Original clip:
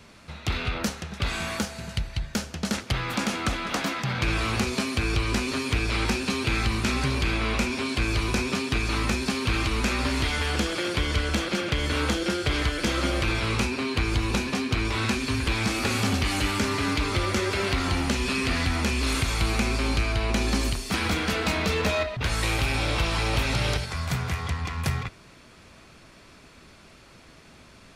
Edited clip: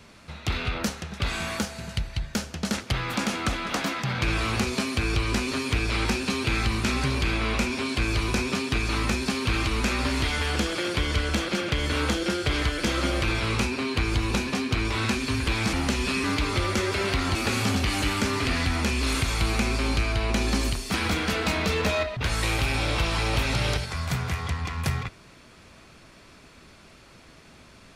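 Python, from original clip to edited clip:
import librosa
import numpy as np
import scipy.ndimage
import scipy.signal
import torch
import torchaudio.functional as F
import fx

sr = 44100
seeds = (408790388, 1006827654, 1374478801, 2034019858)

y = fx.edit(x, sr, fx.swap(start_s=15.73, length_s=1.1, other_s=17.94, other_length_s=0.51), tone=tone)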